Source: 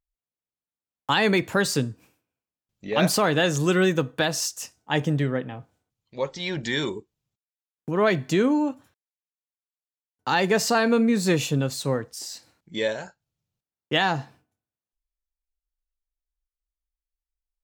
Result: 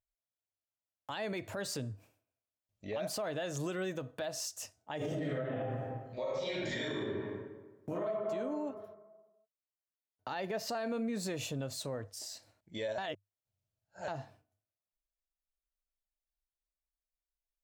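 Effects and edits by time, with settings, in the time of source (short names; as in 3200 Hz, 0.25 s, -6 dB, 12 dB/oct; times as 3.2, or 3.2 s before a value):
4.97–8.06 reverb throw, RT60 1.2 s, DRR -11.5 dB
8.7–10.69 bell 7900 Hz -11 dB 0.53 oct
12.98–14.08 reverse
whole clip: thirty-one-band EQ 100 Hz +12 dB, 160 Hz -6 dB, 630 Hz +12 dB; compressor 4:1, threshold -23 dBFS; limiter -20 dBFS; gain -8.5 dB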